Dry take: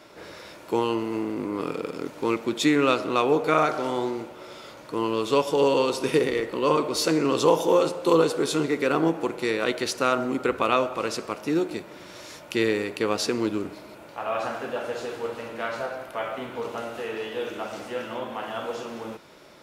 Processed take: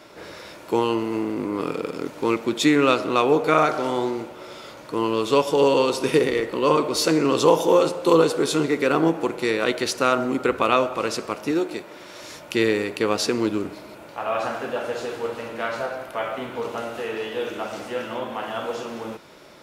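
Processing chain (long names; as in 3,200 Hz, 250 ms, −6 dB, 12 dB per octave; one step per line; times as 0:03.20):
0:11.51–0:12.22: bass and treble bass −8 dB, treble −1 dB
level +3 dB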